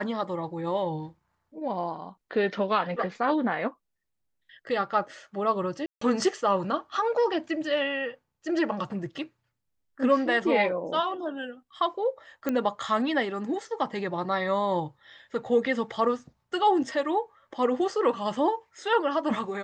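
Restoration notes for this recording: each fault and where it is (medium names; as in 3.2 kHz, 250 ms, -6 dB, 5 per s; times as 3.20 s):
5.86–6.01 s: dropout 154 ms
12.49 s: pop -15 dBFS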